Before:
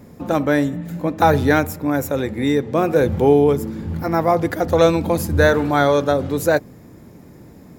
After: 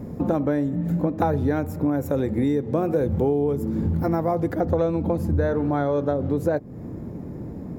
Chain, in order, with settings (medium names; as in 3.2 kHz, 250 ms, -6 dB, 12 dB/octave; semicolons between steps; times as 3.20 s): tilt shelf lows +9.5 dB, about 1.3 kHz; compression 6:1, threshold -20 dBFS, peak gain reduction 17.5 dB; treble shelf 4.7 kHz +4.5 dB, from 2.06 s +10 dB, from 4.53 s -2 dB